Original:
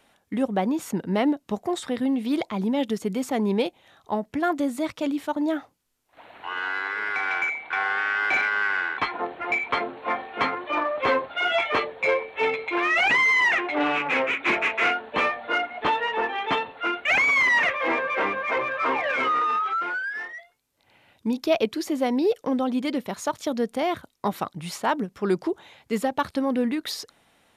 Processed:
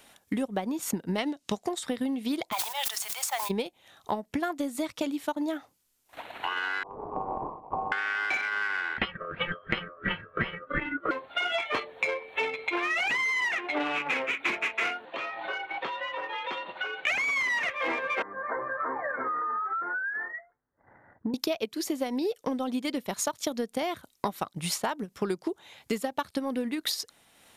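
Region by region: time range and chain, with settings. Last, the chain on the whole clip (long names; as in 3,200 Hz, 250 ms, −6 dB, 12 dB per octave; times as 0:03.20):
0:01.18–0:01.69: low-pass filter 7,200 Hz + high-shelf EQ 2,400 Hz +11.5 dB
0:02.51–0:03.49: Butterworth high-pass 690 Hz 48 dB per octave + background noise white −54 dBFS + level that may fall only so fast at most 34 dB per second
0:06.83–0:07.92: variable-slope delta modulation 16 kbit/s + Butterworth low-pass 1,100 Hz 96 dB per octave + low-shelf EQ 160 Hz −5 dB
0:08.98–0:11.11: auto-filter low-pass sine 2.8 Hz 280–2,300 Hz + ring modulation 870 Hz
0:15.05–0:17.07: moving average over 4 samples + downward compressor 12 to 1, threshold −34 dBFS + frequency shifter +83 Hz
0:18.22–0:21.34: Butterworth low-pass 1,900 Hz 96 dB per octave + downward compressor 2 to 1, threshold −36 dBFS
whole clip: high-shelf EQ 3,800 Hz +10 dB; transient designer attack +6 dB, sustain −5 dB; downward compressor 5 to 1, threshold −30 dBFS; level +2 dB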